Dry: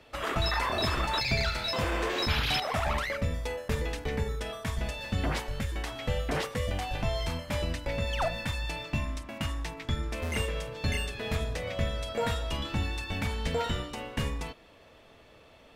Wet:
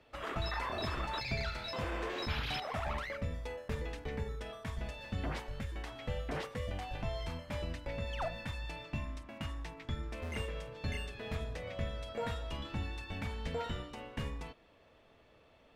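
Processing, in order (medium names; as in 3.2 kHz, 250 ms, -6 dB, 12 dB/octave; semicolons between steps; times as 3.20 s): treble shelf 5 kHz -8.5 dB; trim -7.5 dB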